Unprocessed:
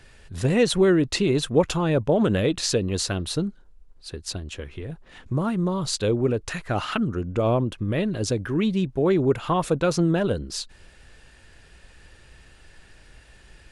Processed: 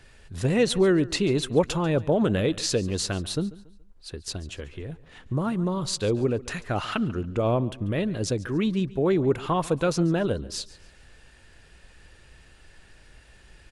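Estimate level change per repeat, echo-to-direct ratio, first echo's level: −9.0 dB, −19.0 dB, −19.5 dB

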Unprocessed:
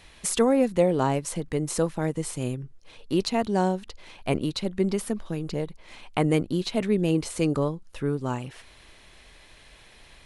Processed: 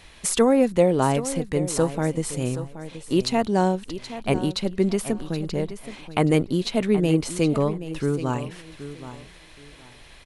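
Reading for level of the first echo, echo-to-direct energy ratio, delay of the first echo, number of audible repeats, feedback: −13.0 dB, −13.0 dB, 775 ms, 2, 23%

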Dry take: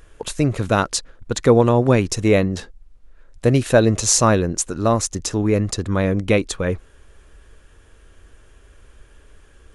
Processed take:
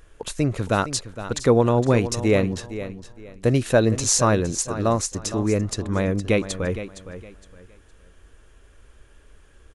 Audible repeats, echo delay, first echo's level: 2, 463 ms, −12.5 dB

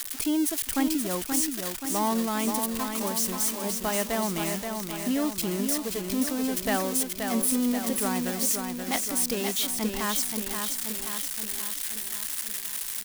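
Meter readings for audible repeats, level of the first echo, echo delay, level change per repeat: 6, −5.5 dB, 528 ms, −4.5 dB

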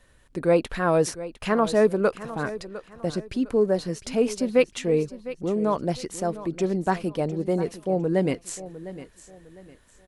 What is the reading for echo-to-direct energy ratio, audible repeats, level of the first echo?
−14.5 dB, 3, −15.0 dB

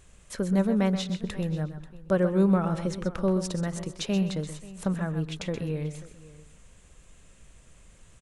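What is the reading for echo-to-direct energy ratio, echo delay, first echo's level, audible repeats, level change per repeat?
−9.5 dB, 127 ms, −11.0 dB, 4, repeats not evenly spaced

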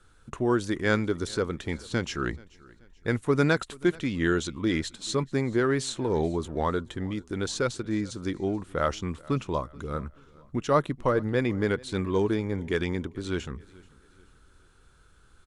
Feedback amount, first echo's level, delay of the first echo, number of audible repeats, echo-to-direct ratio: 41%, −23.5 dB, 432 ms, 2, −22.5 dB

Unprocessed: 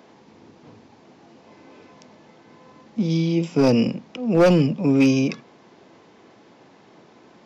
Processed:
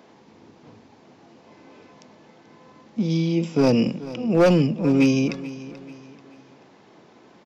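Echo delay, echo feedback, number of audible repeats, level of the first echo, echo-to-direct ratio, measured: 435 ms, 40%, 3, −16.5 dB, −15.5 dB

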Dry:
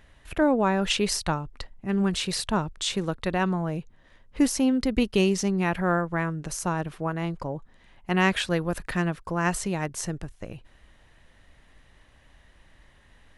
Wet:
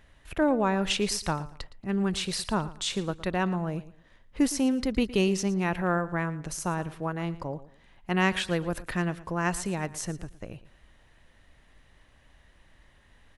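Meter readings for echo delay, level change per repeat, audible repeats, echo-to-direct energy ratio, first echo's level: 114 ms, −11.5 dB, 2, −16.5 dB, −17.0 dB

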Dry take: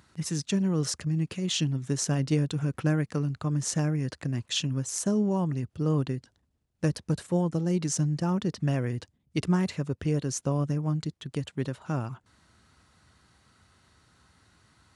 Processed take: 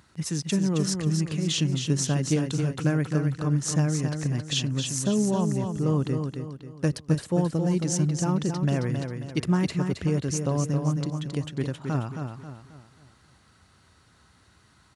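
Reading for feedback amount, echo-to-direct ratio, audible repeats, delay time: 40%, −5.5 dB, 4, 269 ms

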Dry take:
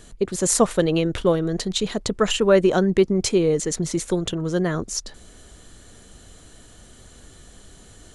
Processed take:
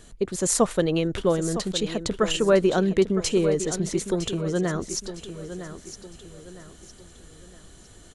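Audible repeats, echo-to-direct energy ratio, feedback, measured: 3, −11.0 dB, 38%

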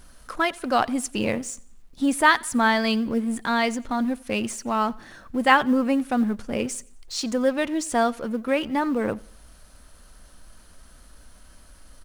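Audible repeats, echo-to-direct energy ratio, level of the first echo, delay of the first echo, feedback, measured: 2, −23.0 dB, −24.0 dB, 89 ms, 41%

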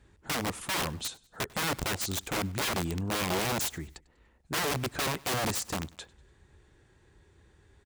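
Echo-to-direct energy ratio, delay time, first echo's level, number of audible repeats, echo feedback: −22.5 dB, 97 ms, −23.5 dB, 2, 45%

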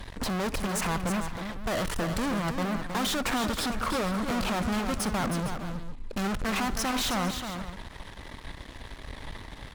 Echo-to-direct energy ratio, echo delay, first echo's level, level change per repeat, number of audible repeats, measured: −6.5 dB, 62 ms, −18.5 dB, repeats not evenly spaced, 3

